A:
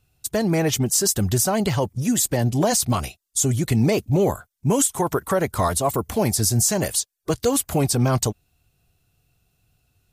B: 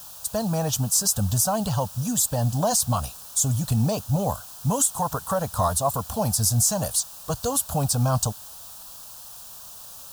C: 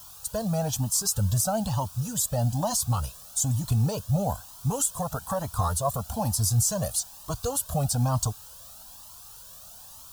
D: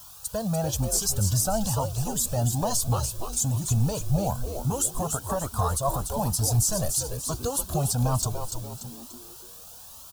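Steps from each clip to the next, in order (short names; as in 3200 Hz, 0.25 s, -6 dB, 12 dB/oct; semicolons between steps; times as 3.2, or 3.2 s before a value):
added noise white -41 dBFS; fixed phaser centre 870 Hz, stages 4
low shelf 350 Hz +3 dB; cascading flanger rising 1.1 Hz
frequency-shifting echo 0.291 s, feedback 41%, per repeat -120 Hz, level -6 dB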